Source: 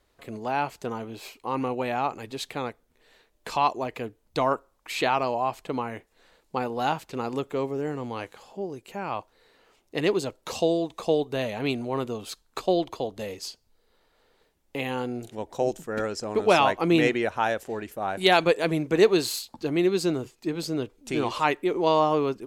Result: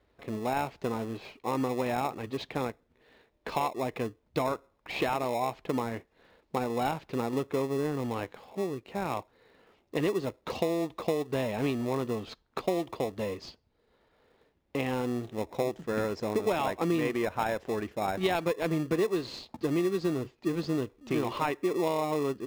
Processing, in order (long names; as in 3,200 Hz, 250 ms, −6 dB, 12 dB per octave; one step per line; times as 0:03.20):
high-pass filter 50 Hz
high-frequency loss of the air 230 metres
in parallel at −7.5 dB: decimation without filtering 29×
on the sum: downward compressor 6 to 1, threshold −25 dBFS, peak gain reduction 13 dB